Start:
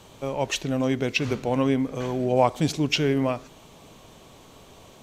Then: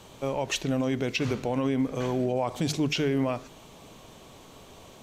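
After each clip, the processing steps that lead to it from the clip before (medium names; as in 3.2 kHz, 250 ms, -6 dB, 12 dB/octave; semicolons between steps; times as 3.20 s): hum notches 50/100/150 Hz; peak limiter -17.5 dBFS, peak gain reduction 10.5 dB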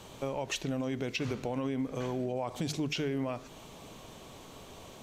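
compression 2:1, threshold -35 dBFS, peak gain reduction 7.5 dB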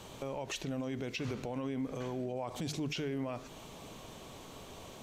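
peak limiter -28.5 dBFS, peak gain reduction 6.5 dB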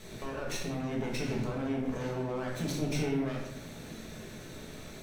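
comb filter that takes the minimum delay 0.5 ms; simulated room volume 260 m³, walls mixed, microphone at 1.5 m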